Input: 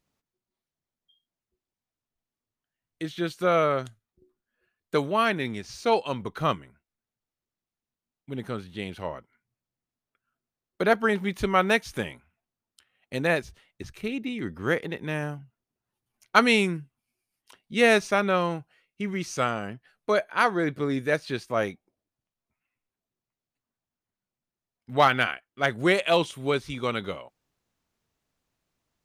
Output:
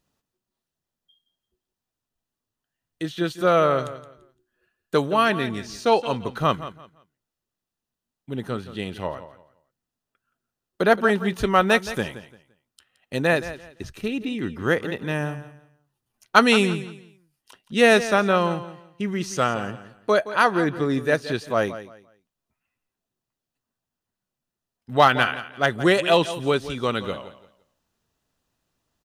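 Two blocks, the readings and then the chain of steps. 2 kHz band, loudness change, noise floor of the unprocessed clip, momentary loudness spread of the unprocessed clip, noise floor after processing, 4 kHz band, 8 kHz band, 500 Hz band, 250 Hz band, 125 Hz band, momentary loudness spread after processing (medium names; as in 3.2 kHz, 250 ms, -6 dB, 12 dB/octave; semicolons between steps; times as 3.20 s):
+3.0 dB, +3.5 dB, under -85 dBFS, 15 LU, under -85 dBFS, +4.0 dB, +4.0 dB, +4.0 dB, +4.0 dB, +4.0 dB, 15 LU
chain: band-stop 2.2 kHz, Q 7.9; on a send: feedback delay 171 ms, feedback 25%, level -14 dB; on the sum: trim +4 dB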